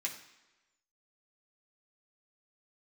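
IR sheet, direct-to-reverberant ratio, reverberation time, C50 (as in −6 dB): −2.5 dB, 1.1 s, 9.0 dB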